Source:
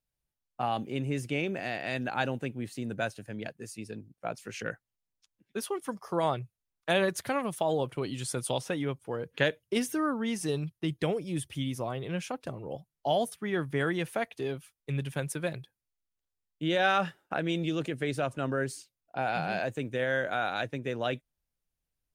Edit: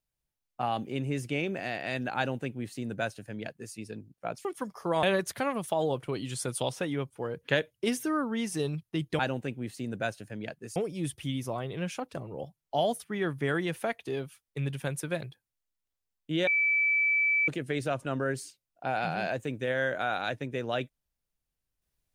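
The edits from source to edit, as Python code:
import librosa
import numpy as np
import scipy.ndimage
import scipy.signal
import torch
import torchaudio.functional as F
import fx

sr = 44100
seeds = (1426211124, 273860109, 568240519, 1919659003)

y = fx.edit(x, sr, fx.duplicate(start_s=2.17, length_s=1.57, to_s=11.08),
    fx.cut(start_s=4.45, length_s=1.27),
    fx.cut(start_s=6.3, length_s=0.62),
    fx.bleep(start_s=16.79, length_s=1.01, hz=2310.0, db=-22.5), tone=tone)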